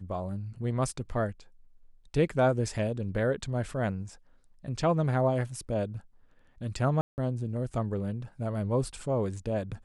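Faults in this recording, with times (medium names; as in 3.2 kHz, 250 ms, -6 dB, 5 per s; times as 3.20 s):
7.01–7.18 s: dropout 169 ms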